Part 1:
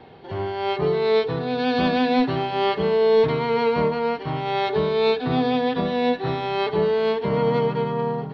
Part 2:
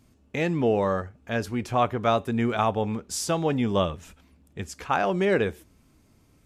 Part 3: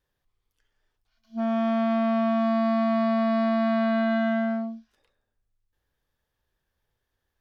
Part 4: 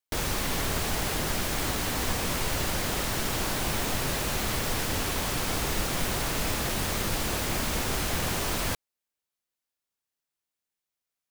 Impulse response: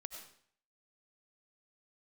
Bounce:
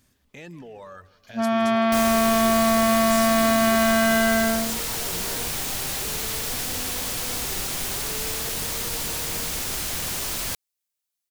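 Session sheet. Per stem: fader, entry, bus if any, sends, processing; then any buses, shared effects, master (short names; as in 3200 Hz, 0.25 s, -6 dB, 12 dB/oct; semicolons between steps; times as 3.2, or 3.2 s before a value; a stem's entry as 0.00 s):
-14.5 dB, 1.30 s, no send, no echo send, limiter -20.5 dBFS, peak gain reduction 10.5 dB
-6.5 dB, 0.00 s, no send, echo send -19 dB, reverb removal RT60 1.7 s; limiter -28 dBFS, peak gain reduction 17 dB
+1.0 dB, 0.00 s, no send, no echo send, bell 1700 Hz +6 dB 2.7 oct
-5.5 dB, 1.80 s, no send, no echo send, dry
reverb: off
echo: feedback echo 0.16 s, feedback 49%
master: high shelf 2800 Hz +11.5 dB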